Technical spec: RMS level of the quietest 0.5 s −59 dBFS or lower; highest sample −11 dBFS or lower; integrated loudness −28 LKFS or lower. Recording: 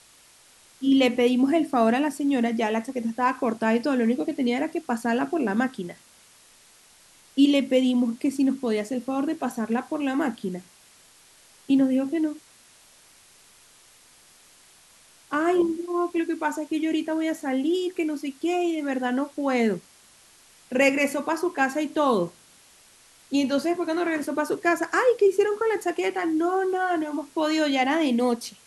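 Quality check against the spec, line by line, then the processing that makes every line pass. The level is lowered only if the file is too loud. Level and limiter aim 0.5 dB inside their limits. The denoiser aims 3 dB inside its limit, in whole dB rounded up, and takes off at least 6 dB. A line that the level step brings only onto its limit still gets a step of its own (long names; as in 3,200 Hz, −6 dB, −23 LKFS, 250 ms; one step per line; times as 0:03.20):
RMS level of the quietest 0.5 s −55 dBFS: out of spec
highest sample −6.0 dBFS: out of spec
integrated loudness −24.5 LKFS: out of spec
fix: broadband denoise 6 dB, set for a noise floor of −55 dBFS
level −4 dB
brickwall limiter −11.5 dBFS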